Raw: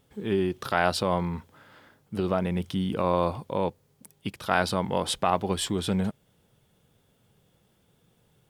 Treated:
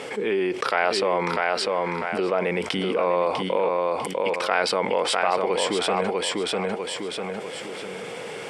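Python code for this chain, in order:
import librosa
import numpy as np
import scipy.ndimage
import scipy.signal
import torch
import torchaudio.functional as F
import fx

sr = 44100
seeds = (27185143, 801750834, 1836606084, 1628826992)

y = fx.cabinet(x, sr, low_hz=410.0, low_slope=12, high_hz=8100.0, hz=(470.0, 2200.0, 3700.0, 6500.0), db=(7, 9, -7, -7))
y = fx.echo_feedback(y, sr, ms=648, feedback_pct=17, wet_db=-6.0)
y = fx.env_flatten(y, sr, amount_pct=70)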